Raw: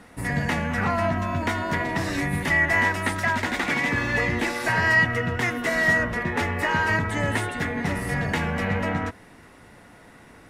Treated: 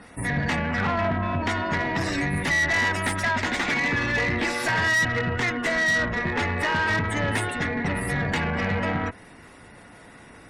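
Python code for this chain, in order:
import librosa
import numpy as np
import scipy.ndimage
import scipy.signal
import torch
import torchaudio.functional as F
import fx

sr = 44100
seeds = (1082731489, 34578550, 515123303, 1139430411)

y = fx.high_shelf(x, sr, hz=3600.0, db=5.5)
y = fx.spec_gate(y, sr, threshold_db=-25, keep='strong')
y = fx.tube_stage(y, sr, drive_db=21.0, bias=0.35)
y = F.gain(torch.from_numpy(y), 2.5).numpy()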